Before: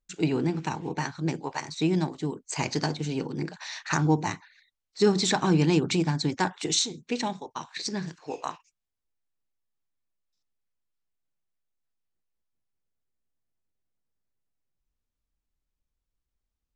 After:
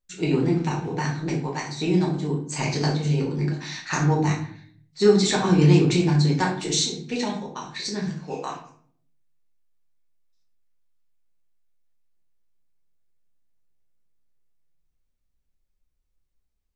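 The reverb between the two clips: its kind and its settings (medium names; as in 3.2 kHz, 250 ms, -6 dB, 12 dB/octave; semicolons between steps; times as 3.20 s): simulated room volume 71 m³, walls mixed, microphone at 0.95 m; trim -1.5 dB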